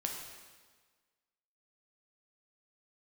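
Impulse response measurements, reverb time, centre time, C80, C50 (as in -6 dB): 1.5 s, 54 ms, 5.0 dB, 3.5 dB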